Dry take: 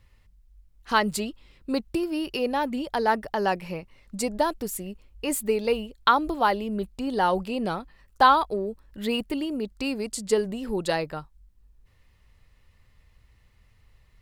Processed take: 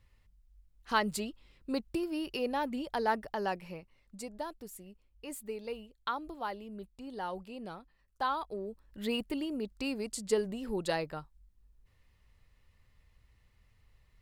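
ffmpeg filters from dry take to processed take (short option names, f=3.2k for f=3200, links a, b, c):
-af "volume=2dB,afade=t=out:st=3.05:d=1.23:silence=0.375837,afade=t=in:st=8.29:d=0.74:silence=0.354813"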